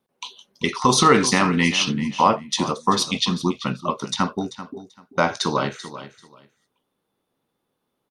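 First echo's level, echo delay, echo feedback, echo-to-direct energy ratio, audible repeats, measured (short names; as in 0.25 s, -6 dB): -14.0 dB, 0.388 s, 20%, -14.0 dB, 2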